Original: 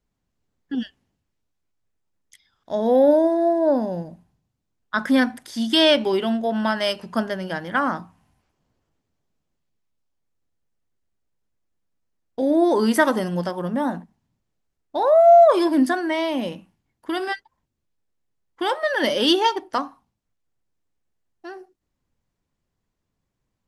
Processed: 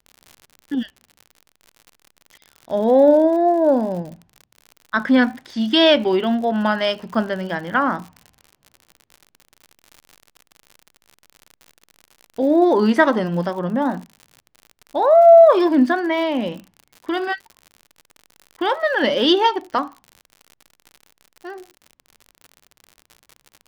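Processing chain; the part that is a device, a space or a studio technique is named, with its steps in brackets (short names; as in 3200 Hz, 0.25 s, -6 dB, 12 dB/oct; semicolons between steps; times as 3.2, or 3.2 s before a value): lo-fi chain (LPF 3800 Hz 12 dB/oct; wow and flutter; crackle 67/s -34 dBFS); gain +3 dB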